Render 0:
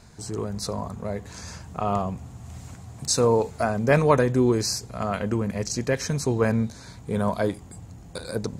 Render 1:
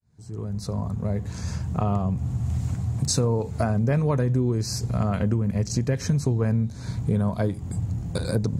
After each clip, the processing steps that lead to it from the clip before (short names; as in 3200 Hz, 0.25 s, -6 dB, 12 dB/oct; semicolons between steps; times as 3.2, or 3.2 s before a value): opening faded in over 2.17 s; bell 110 Hz +14.5 dB 2.5 oct; compressor 6:1, threshold -23 dBFS, peak gain reduction 15 dB; gain +2.5 dB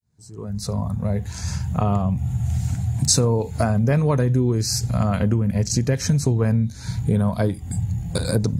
spectral noise reduction 9 dB; high shelf 4400 Hz +6.5 dB; gain +3.5 dB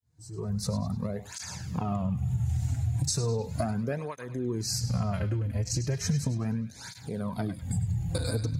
compressor, threshold -24 dBFS, peak gain reduction 10.5 dB; narrowing echo 0.101 s, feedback 57%, band-pass 2900 Hz, level -8.5 dB; tape flanging out of phase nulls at 0.36 Hz, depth 5.5 ms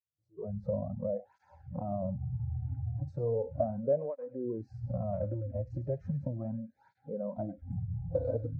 spectral noise reduction 25 dB; synth low-pass 570 Hz, resonance Q 6.8; gain -7.5 dB